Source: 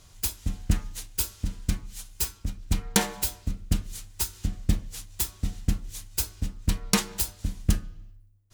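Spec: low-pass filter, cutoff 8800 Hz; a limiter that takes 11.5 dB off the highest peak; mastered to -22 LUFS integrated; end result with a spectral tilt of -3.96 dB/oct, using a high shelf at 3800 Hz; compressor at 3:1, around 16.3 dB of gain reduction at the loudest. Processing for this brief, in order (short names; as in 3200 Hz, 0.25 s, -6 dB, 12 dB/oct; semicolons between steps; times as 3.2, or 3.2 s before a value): LPF 8800 Hz; high shelf 3800 Hz -5.5 dB; compressor 3:1, threshold -40 dBFS; gain +26 dB; limiter -5 dBFS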